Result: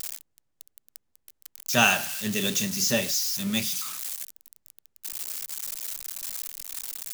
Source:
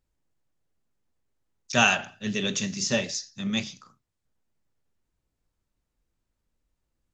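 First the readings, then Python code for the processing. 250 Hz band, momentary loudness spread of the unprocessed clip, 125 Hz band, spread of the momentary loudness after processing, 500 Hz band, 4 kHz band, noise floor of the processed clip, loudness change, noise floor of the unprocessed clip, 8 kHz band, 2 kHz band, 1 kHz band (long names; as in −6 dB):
0.0 dB, 11 LU, 0.0 dB, 15 LU, 0.0 dB, +2.5 dB, −74 dBFS, −0.5 dB, −81 dBFS, +6.0 dB, +0.5 dB, 0.0 dB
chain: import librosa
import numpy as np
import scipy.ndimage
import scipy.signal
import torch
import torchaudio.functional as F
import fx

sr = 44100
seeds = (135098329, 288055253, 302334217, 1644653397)

y = x + 0.5 * 10.0 ** (-22.0 / 20.0) * np.diff(np.sign(x), prepend=np.sign(x[:1]))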